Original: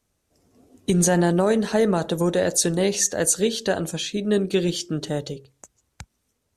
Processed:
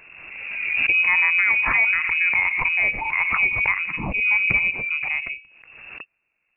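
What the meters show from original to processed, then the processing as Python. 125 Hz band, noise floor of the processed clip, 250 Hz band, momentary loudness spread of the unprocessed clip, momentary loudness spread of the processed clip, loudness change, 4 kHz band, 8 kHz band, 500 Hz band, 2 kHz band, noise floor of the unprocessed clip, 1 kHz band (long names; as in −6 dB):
−13.0 dB, −74 dBFS, −18.0 dB, 9 LU, 13 LU, +3.5 dB, −6.5 dB, below −40 dB, −21.0 dB, +17.5 dB, −74 dBFS, +1.0 dB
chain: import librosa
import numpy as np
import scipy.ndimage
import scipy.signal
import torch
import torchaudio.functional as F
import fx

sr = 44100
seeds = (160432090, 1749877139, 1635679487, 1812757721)

y = fx.freq_invert(x, sr, carrier_hz=2700)
y = fx.pre_swell(y, sr, db_per_s=35.0)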